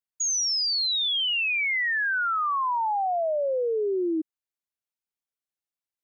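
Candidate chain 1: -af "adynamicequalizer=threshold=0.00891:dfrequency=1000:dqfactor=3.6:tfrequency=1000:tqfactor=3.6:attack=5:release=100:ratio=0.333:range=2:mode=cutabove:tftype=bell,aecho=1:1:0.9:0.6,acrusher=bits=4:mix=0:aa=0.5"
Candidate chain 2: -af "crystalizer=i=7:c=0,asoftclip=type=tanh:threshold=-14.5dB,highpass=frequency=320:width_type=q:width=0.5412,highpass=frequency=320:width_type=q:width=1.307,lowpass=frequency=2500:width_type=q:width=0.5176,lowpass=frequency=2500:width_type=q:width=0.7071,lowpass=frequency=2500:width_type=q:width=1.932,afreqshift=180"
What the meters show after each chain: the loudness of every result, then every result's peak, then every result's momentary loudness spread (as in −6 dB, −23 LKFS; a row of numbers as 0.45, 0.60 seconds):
−23.0, −22.0 LKFS; −17.5, −17.0 dBFS; 11, 14 LU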